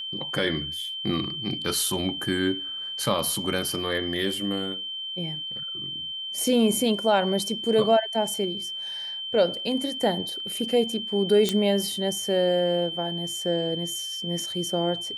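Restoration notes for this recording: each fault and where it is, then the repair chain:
whistle 3,100 Hz −31 dBFS
0:11.49: click −9 dBFS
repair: click removal
notch filter 3,100 Hz, Q 30

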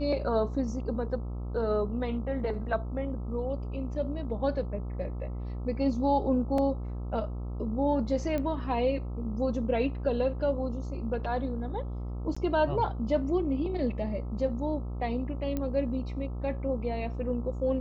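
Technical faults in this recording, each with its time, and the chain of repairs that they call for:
mains buzz 60 Hz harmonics 22 −35 dBFS
0:06.58: drop-out 3.2 ms
0:08.38: click −20 dBFS
0:12.35–0:12.37: drop-out 15 ms
0:15.57: click −19 dBFS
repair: click removal
hum removal 60 Hz, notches 22
repair the gap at 0:06.58, 3.2 ms
repair the gap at 0:12.35, 15 ms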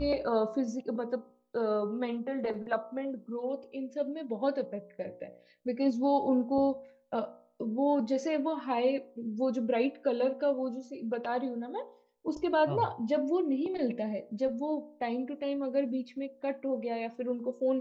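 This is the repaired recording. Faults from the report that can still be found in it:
none of them is left

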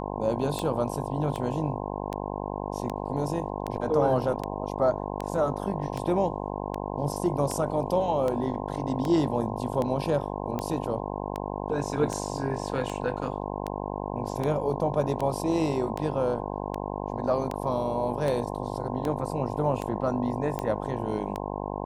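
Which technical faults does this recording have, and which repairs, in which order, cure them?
mains buzz 50 Hz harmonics 21 −33 dBFS
scratch tick 78 rpm −17 dBFS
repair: click removal
hum removal 50 Hz, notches 21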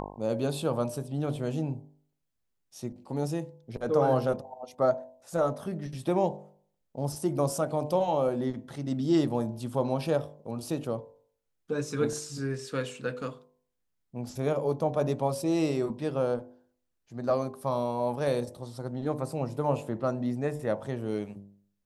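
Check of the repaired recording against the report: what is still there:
none of them is left

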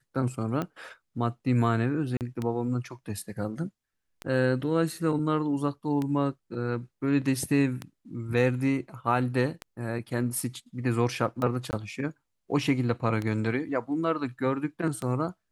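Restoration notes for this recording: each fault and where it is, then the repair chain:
scratch tick 33 1/3 rpm −18 dBFS
0:02.17–0:02.21: drop-out 38 ms
0:11.71–0:11.73: drop-out 19 ms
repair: click removal
repair the gap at 0:02.17, 38 ms
repair the gap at 0:11.71, 19 ms

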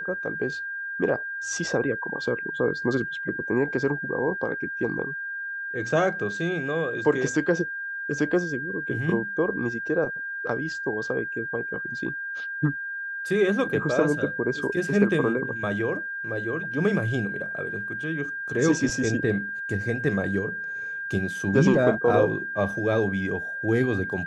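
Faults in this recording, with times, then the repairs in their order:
whistle 1,600 Hz −30 dBFS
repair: notch filter 1,600 Hz, Q 30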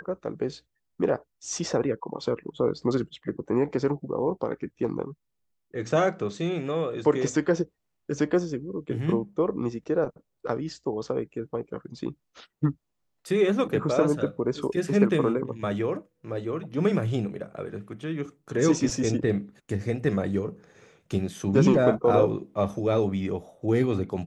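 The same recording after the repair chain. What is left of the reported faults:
none of them is left

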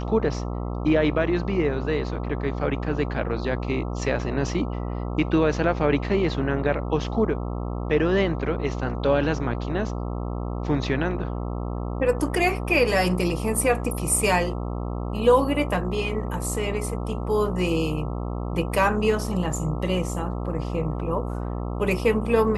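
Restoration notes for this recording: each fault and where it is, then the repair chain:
mains buzz 60 Hz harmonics 22 −29 dBFS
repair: hum removal 60 Hz, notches 22

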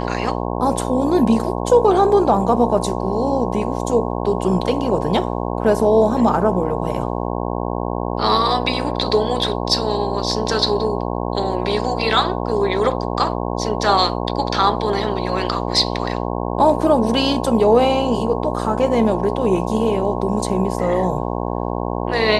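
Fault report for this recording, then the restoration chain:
mains buzz 60 Hz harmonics 18 −23 dBFS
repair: hum removal 60 Hz, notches 18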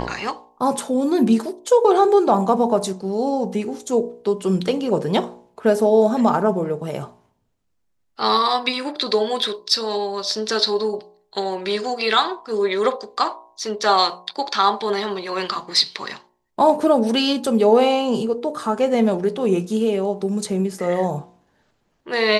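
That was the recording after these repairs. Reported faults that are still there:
none of them is left

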